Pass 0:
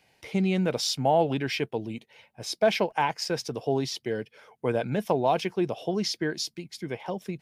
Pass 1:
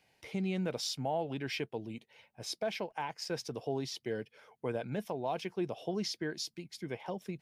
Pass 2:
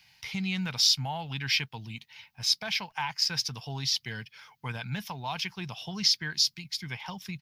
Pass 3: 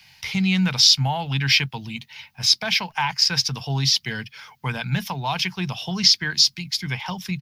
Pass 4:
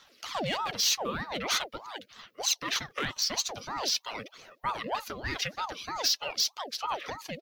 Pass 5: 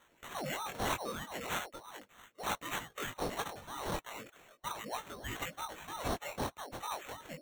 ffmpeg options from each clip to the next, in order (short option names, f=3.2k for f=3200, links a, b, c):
-af "alimiter=limit=-19dB:level=0:latency=1:release=426,volume=-6dB"
-af "firequalizer=gain_entry='entry(140,0);entry(330,-20);entry(560,-20);entry(880,-2);entry(2200,3);entry(5000,9);entry(8300,-4);entry(14000,6)':delay=0.05:min_phase=1,volume=7.5dB"
-filter_complex "[0:a]acrossover=split=240|640|7600[a][b][c][d];[a]asplit=2[e][f];[f]adelay=22,volume=-3dB[g];[e][g]amix=inputs=2:normalize=0[h];[d]alimiter=level_in=12.5dB:limit=-24dB:level=0:latency=1:release=94,volume=-12.5dB[i];[h][b][c][i]amix=inputs=4:normalize=0,volume=9dB"
-af "asoftclip=type=hard:threshold=-13.5dB,aphaser=in_gain=1:out_gain=1:delay=4.9:decay=0.51:speed=0.44:type=sinusoidal,aeval=exprs='val(0)*sin(2*PI*720*n/s+720*0.55/3.2*sin(2*PI*3.2*n/s))':c=same,volume=-7dB"
-af "flanger=delay=17.5:depth=5.9:speed=0.38,acrusher=samples=9:mix=1:aa=0.000001,volume=-4.5dB"